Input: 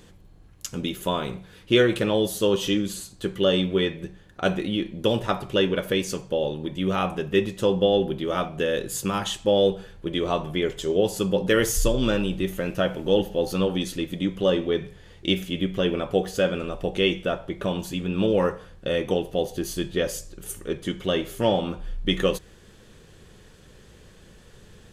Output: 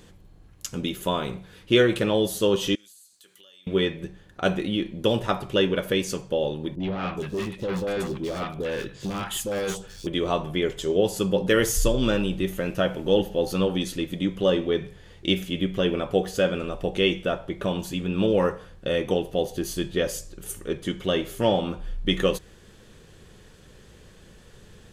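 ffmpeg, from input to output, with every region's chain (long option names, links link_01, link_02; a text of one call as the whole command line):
ffmpeg -i in.wav -filter_complex "[0:a]asettb=1/sr,asplit=3[link_01][link_02][link_03];[link_01]atrim=end=2.754[link_04];[link_02]atrim=start=2.75:end=3.67,asetpts=PTS-STARTPTS,afade=type=in:duration=0.004:curve=qsin,afade=type=out:start_time=0.916:duration=0.004:curve=qsin,aderivative,acompressor=threshold=-50dB:ratio=6:attack=3.2:release=140:knee=1:detection=peak[link_05];[link_03]atrim=start=3.666[link_06];[link_04][link_05]acrossfade=duration=0.004:curve1=hsin:curve2=qsin[link_07];[link_07][link_06]acrossfade=duration=0.004:curve1=qsin:curve2=hsin,asettb=1/sr,asplit=3[link_08][link_09][link_10];[link_08]atrim=end=6.754[link_11];[link_09]atrim=start=6.75:end=10.07,asetpts=PTS-STARTPTS,afade=type=in:duration=0.004:curve=qsin,afade=type=out:start_time=3.316:duration=0.004:curve=qsin,asoftclip=type=hard:threshold=-24.5dB,acrossover=split=860|4200[link_12][link_13][link_14];[link_13]adelay=50[link_15];[link_14]adelay=420[link_16];[link_12][link_15][link_16]amix=inputs=3:normalize=0,atrim=end_sample=146412[link_17];[link_10]atrim=start=10.066[link_18];[link_11][link_17]acrossfade=duration=0.004:curve1=hsin:curve2=qsin[link_19];[link_19][link_18]acrossfade=duration=0.004:curve1=qsin:curve2=hsin" out.wav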